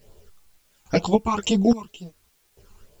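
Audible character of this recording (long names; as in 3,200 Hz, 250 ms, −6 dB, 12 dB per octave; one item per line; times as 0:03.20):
sample-and-hold tremolo, depth 95%
phaser sweep stages 12, 2.1 Hz, lowest notch 530–2,100 Hz
a quantiser's noise floor 12 bits, dither triangular
a shimmering, thickened sound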